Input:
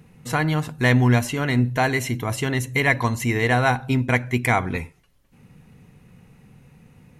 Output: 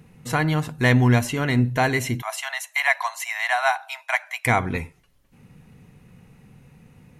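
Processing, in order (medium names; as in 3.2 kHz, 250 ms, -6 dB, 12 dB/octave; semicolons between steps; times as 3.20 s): 2.22–4.46 s: steep high-pass 640 Hz 96 dB/octave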